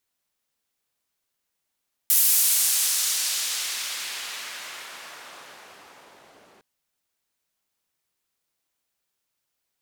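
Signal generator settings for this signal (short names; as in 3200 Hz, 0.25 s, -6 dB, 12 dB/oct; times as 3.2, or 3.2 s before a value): swept filtered noise white, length 4.51 s bandpass, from 14000 Hz, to 400 Hz, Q 0.71, exponential, gain ramp -28 dB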